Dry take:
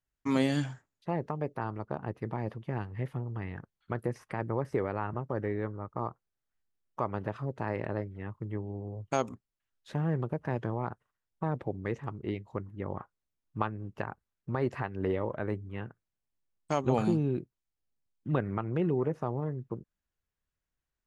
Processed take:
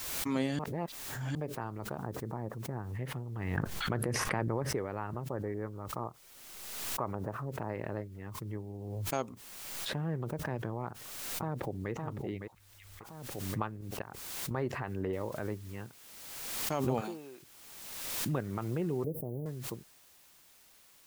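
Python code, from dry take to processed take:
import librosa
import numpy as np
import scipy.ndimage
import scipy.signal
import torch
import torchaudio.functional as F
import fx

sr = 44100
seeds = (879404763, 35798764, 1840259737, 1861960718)

y = fx.lowpass(x, sr, hz=1600.0, slope=24, at=(2.0, 2.93))
y = fx.env_flatten(y, sr, amount_pct=100, at=(3.57, 4.63))
y = fx.filter_lfo_lowpass(y, sr, shape='saw_up', hz=fx.line((5.25, 8.7), (7.68, 1.7)), low_hz=800.0, high_hz=2500.0, q=0.96, at=(5.25, 7.68), fade=0.02)
y = fx.peak_eq(y, sr, hz=6400.0, db=-7.0, octaves=0.4, at=(9.29, 9.97))
y = fx.echo_throw(y, sr, start_s=10.84, length_s=1.07, ms=560, feedback_pct=35, wet_db=-6.0)
y = fx.cheby2_bandstop(y, sr, low_hz=210.0, high_hz=670.0, order=4, stop_db=80, at=(12.53, 13.0), fade=0.02)
y = fx.level_steps(y, sr, step_db=16, at=(13.81, 14.51))
y = fx.noise_floor_step(y, sr, seeds[0], at_s=15.13, before_db=-70, after_db=-56, tilt_db=0.0)
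y = fx.highpass(y, sr, hz=fx.line((17.0, 400.0), (17.42, 900.0)), slope=12, at=(17.0, 17.42), fade=0.02)
y = fx.cheby2_bandstop(y, sr, low_hz=1700.0, high_hz=4500.0, order=4, stop_db=70, at=(19.04, 19.46))
y = fx.edit(y, sr, fx.reverse_span(start_s=0.59, length_s=0.76), tone=tone)
y = fx.pre_swell(y, sr, db_per_s=33.0)
y = y * 10.0 ** (-5.0 / 20.0)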